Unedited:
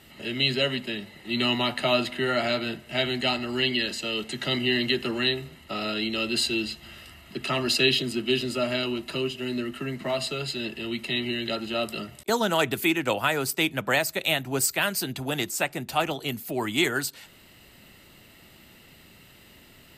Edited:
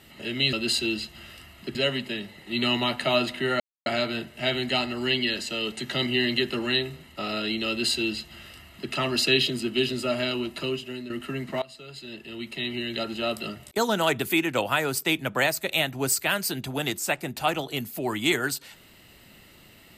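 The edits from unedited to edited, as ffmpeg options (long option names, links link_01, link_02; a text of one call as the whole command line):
ffmpeg -i in.wav -filter_complex "[0:a]asplit=6[link_01][link_02][link_03][link_04][link_05][link_06];[link_01]atrim=end=0.532[link_07];[link_02]atrim=start=6.208:end=7.432[link_08];[link_03]atrim=start=0.528:end=2.38,asetpts=PTS-STARTPTS,afade=type=out:start_time=1.848:duration=0.004:curve=hsin,apad=pad_dur=0.26[link_09];[link_04]atrim=start=2.38:end=9.62,asetpts=PTS-STARTPTS,afade=type=in:duration=0.004:curve=hsin,afade=type=out:start_time=6.67:duration=0.57:curve=qsin:silence=0.281838[link_10];[link_05]atrim=start=9.62:end=10.14,asetpts=PTS-STARTPTS,afade=type=in:duration=0.004:curve=hsin:silence=0.281838,afade=type=out:start_time=0.516:duration=0.004:curve=hsin:silence=0.0944061[link_11];[link_06]atrim=start=10.14,asetpts=PTS-STARTPTS,afade=type=in:duration=1.5:silence=0.0944061[link_12];[link_07][link_08]acrossfade=duration=0.004:curve1=hsin:curve2=hsin[link_13];[link_09][link_10][link_11][link_12]concat=n=4:v=0:a=1[link_14];[link_13][link_14]acrossfade=duration=0.004:curve1=hsin:curve2=hsin" out.wav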